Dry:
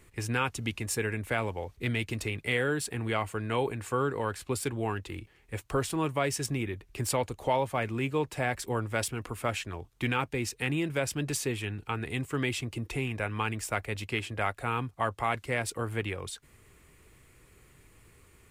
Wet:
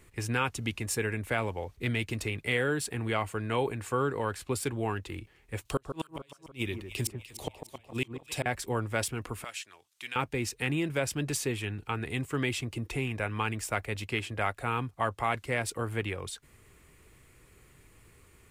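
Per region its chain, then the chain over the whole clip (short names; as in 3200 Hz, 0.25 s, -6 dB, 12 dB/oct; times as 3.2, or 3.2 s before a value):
5.65–8.46 resonant high shelf 2300 Hz +7.5 dB, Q 1.5 + flipped gate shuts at -18 dBFS, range -37 dB + echo with dull and thin repeats by turns 0.149 s, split 1600 Hz, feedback 64%, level -7.5 dB
9.44–10.16 band-pass 7200 Hz, Q 0.52 + mismatched tape noise reduction encoder only
whole clip: dry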